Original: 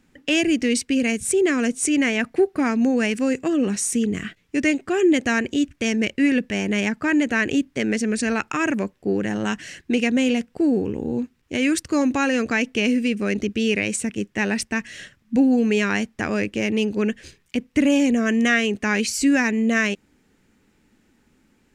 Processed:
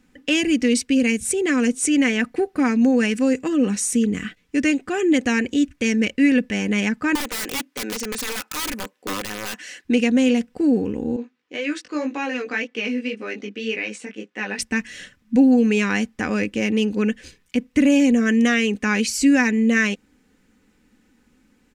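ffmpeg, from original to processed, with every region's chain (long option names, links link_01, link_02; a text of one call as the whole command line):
ffmpeg -i in.wav -filter_complex "[0:a]asettb=1/sr,asplit=3[link_01][link_02][link_03];[link_01]atrim=end=7.154[link_04];[link_02]atrim=start=7.15:end=9.85,asetpts=PTS-STARTPTS,afade=type=in:duration=0.004:curve=qsin,afade=type=out:start_time=2.696:duration=0.004:curve=qsin,highpass=410,aeval=exprs='(mod(11.9*val(0)+1,2)-1)/11.9':channel_layout=same[link_05];[link_03]atrim=start=9.846[link_06];[link_04][link_05]acrossfade=duration=0.004:curve1=hsin:curve2=qsin[link_07];[link_07][link_06]acrossfade=duration=0.004:curve1=qsin:curve2=hsin,asettb=1/sr,asplit=3[link_08][link_09][link_10];[link_08]atrim=end=11.164[link_11];[link_09]atrim=start=11.16:end=14.59,asetpts=PTS-STARTPTS,afade=type=in:duration=0.004:curve=qsin,afade=type=out:start_time=3.426:duration=0.004:curve=qsin,flanger=delay=17:depth=3.2:speed=1.9,highpass=350,lowpass=4400[link_12];[link_10]atrim=start=14.586[link_13];[link_11][link_12]acrossfade=duration=0.004:curve1=hsin:curve2=qsin[link_14];[link_14][link_13]acrossfade=duration=0.004:curve1=qsin:curve2=hsin,bandreject=frequency=680:width=12,aecho=1:1:4:0.41" out.wav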